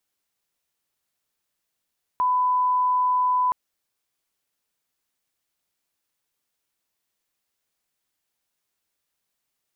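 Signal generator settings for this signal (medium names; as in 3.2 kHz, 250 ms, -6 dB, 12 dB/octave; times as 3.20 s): line-up tone -18 dBFS 1.32 s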